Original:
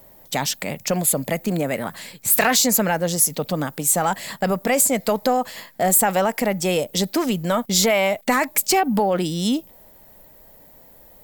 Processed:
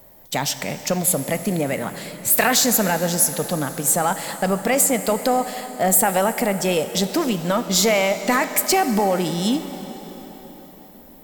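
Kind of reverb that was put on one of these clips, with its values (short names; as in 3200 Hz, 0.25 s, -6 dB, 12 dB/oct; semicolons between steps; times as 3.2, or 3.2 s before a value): plate-style reverb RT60 4.7 s, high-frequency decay 0.8×, DRR 9.5 dB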